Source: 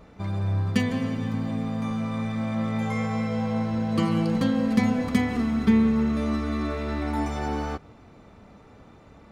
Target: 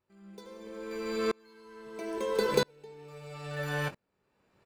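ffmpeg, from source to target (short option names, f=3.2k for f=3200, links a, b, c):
-filter_complex "[0:a]asplit=2[a][b];[b]adelay=42,volume=-9.5dB[c];[a][c]amix=inputs=2:normalize=0,asetrate=88200,aresample=44100,aeval=exprs='val(0)*pow(10,-35*if(lt(mod(-0.76*n/s,1),2*abs(-0.76)/1000),1-mod(-0.76*n/s,1)/(2*abs(-0.76)/1000),(mod(-0.76*n/s,1)-2*abs(-0.76)/1000)/(1-2*abs(-0.76)/1000))/20)':c=same"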